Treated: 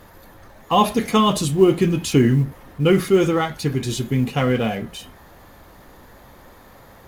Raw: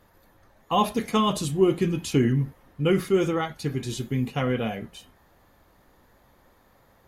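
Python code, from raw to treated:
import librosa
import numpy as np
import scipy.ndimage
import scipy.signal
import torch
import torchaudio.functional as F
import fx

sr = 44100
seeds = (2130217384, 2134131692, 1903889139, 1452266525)

y = fx.law_mismatch(x, sr, coded='mu')
y = y * librosa.db_to_amplitude(5.5)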